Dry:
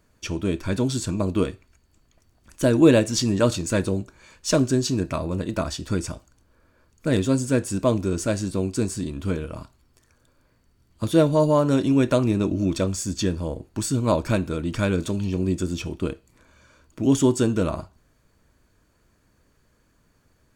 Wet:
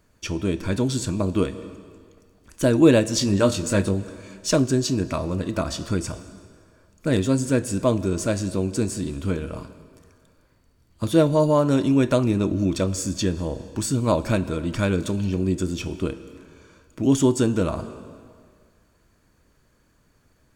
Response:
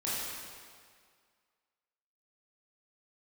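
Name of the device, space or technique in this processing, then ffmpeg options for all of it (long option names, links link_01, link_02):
ducked reverb: -filter_complex "[0:a]asplit=3[link_01][link_02][link_03];[1:a]atrim=start_sample=2205[link_04];[link_02][link_04]afir=irnorm=-1:irlink=0[link_05];[link_03]apad=whole_len=906329[link_06];[link_05][link_06]sidechaincompress=threshold=-28dB:ratio=8:attack=16:release=155,volume=-15.5dB[link_07];[link_01][link_07]amix=inputs=2:normalize=0,asettb=1/sr,asplit=3[link_08][link_09][link_10];[link_08]atrim=end=3.194[link_11];[link_09]atrim=start=3.19:end=3.94,asetpts=PTS-STARTPTS,afade=type=in:duration=0.004:curve=qsin,afade=type=out:start_time=0.746:duration=0.004:curve=qsin,asplit=2[link_12][link_13];[link_13]adelay=20,volume=-7dB[link_14];[link_12][link_14]amix=inputs=2:normalize=0,atrim=end_sample=33075[link_15];[link_10]atrim=start=3.936[link_16];[link_11][link_15]acrossfade=duration=0.004:curve1=hsin:curve2=qsin[link_17];[link_17][link_16]acrossfade=duration=0.004:curve1=qsin:curve2=hsin"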